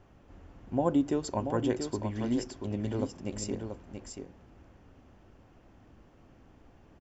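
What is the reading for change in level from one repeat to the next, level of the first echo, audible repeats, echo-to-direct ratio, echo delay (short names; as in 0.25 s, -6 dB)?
no steady repeat, -7.0 dB, 1, -7.0 dB, 0.683 s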